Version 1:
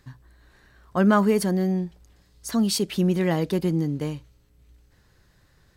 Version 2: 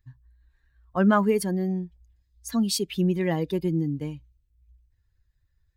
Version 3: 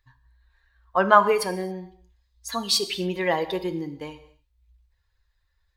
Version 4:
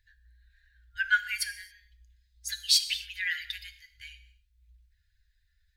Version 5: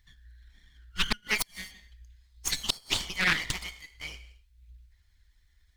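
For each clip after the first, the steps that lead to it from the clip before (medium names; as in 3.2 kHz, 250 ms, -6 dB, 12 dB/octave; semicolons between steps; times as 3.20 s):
expander on every frequency bin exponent 1.5
graphic EQ 125/250/500/1000/2000/4000 Hz -11/-8/+5/+10/+4/+9 dB; gated-style reverb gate 300 ms falling, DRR 10 dB; trim -1 dB
FFT band-reject 100–1400 Hz
comb filter that takes the minimum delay 0.92 ms; inverted gate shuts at -19 dBFS, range -31 dB; loudspeaker Doppler distortion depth 0.61 ms; trim +7.5 dB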